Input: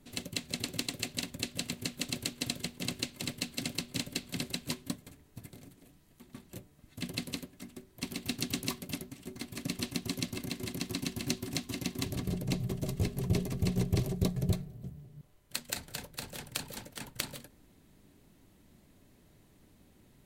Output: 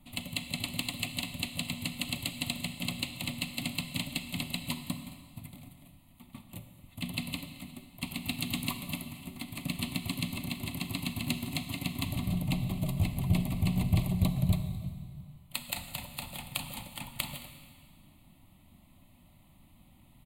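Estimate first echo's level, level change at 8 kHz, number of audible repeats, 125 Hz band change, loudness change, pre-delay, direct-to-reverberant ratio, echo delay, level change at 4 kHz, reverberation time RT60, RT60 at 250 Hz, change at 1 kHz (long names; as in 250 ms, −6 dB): −21.5 dB, −2.0 dB, 1, +3.0 dB, +2.0 dB, 33 ms, 8.5 dB, 219 ms, +1.5 dB, 2.0 s, 2.1 s, +4.0 dB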